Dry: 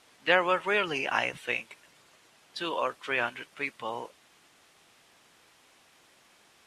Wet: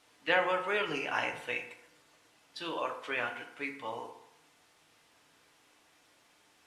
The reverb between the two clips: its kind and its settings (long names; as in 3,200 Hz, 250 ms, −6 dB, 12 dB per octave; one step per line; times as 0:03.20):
feedback delay network reverb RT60 0.8 s, low-frequency decay 0.85×, high-frequency decay 0.55×, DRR 3 dB
level −6 dB